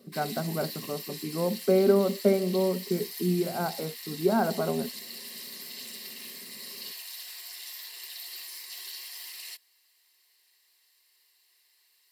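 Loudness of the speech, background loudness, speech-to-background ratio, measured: −28.0 LKFS, −39.0 LKFS, 11.0 dB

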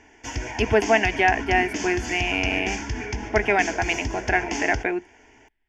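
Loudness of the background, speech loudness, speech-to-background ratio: −30.5 LKFS, −23.0 LKFS, 7.5 dB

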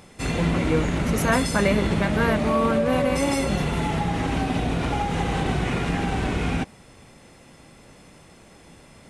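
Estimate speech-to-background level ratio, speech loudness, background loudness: 0.0 dB, −25.0 LKFS, −25.0 LKFS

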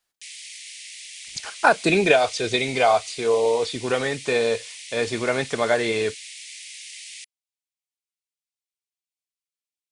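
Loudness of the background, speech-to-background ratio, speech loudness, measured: −37.0 LKFS, 15.0 dB, −22.0 LKFS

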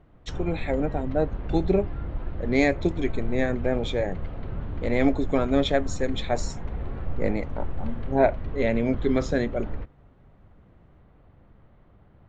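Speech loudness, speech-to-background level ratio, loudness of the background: −26.5 LKFS, 9.0 dB, −35.5 LKFS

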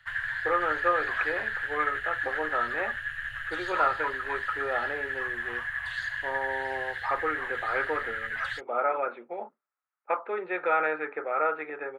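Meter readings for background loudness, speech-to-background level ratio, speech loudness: −32.0 LKFS, 1.0 dB, −31.0 LKFS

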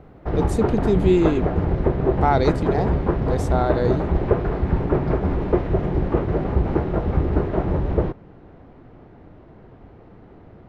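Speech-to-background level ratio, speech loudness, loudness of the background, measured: −0.5 dB, −23.0 LKFS, −22.5 LKFS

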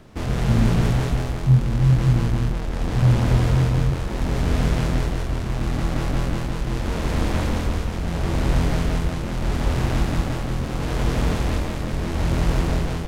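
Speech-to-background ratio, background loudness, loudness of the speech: 2.5 dB, −24.5 LKFS, −22.0 LKFS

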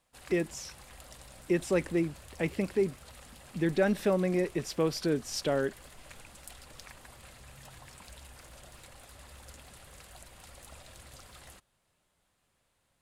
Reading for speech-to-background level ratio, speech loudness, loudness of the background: 19.5 dB, −31.0 LKFS, −50.5 LKFS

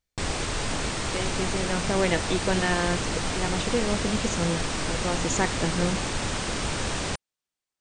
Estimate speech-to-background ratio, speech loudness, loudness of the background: 0.0 dB, −29.0 LKFS, −29.0 LKFS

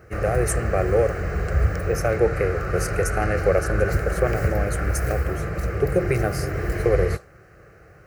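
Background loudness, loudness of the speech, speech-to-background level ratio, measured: −26.0 LKFS, −25.0 LKFS, 1.0 dB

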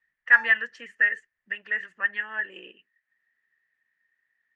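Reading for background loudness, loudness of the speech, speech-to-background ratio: −42.5 LKFS, −23.5 LKFS, 19.0 dB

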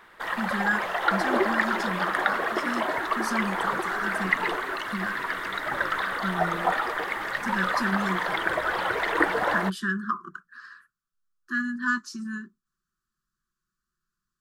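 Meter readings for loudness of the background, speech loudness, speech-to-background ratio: −27.0 LKFS, −31.5 LKFS, −4.5 dB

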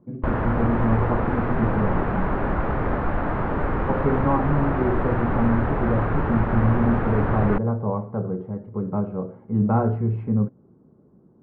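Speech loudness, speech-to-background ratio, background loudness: −25.0 LKFS, 0.5 dB, −25.5 LKFS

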